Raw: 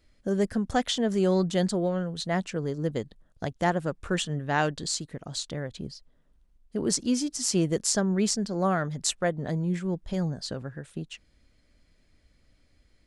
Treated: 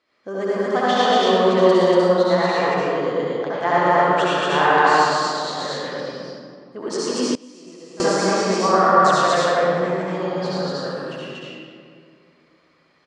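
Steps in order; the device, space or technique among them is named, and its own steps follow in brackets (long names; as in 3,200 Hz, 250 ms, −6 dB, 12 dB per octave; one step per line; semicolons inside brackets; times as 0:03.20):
station announcement (band-pass filter 380–4,300 Hz; parametric band 1,100 Hz +10.5 dB 0.46 octaves; loudspeakers that aren't time-aligned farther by 39 metres −7 dB, 81 metres 0 dB; convolution reverb RT60 2.2 s, pre-delay 60 ms, DRR −8 dB)
0:07.35–0:08.18: noise gate with hold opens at −8 dBFS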